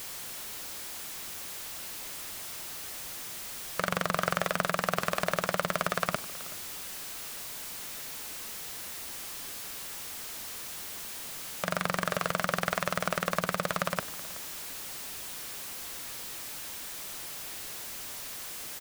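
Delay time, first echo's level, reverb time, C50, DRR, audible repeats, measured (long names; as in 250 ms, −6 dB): 376 ms, −19.0 dB, no reverb audible, no reverb audible, no reverb audible, 1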